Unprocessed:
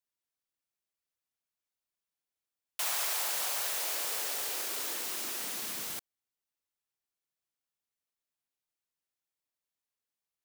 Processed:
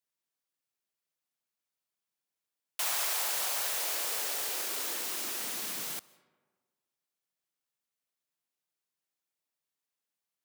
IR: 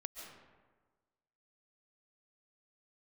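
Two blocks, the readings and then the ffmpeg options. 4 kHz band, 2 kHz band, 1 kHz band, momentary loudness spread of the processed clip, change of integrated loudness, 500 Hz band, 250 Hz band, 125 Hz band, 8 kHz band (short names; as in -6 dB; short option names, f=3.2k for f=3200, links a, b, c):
+1.0 dB, +1.0 dB, +1.0 dB, 6 LU, +1.0 dB, +1.0 dB, +1.0 dB, n/a, +1.0 dB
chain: -filter_complex "[0:a]highpass=f=110:w=0.5412,highpass=f=110:w=1.3066,asplit=2[a][b];[1:a]atrim=start_sample=2205,asetrate=41895,aresample=44100[c];[b][c]afir=irnorm=-1:irlink=0,volume=-14dB[d];[a][d]amix=inputs=2:normalize=0"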